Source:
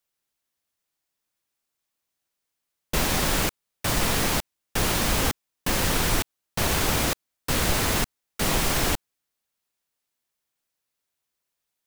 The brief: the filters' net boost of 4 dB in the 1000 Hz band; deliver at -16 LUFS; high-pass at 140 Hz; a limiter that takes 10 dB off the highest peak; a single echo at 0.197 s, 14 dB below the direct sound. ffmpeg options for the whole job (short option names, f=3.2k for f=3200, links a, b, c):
-af "highpass=140,equalizer=f=1k:t=o:g=5,alimiter=limit=-20.5dB:level=0:latency=1,aecho=1:1:197:0.2,volume=14.5dB"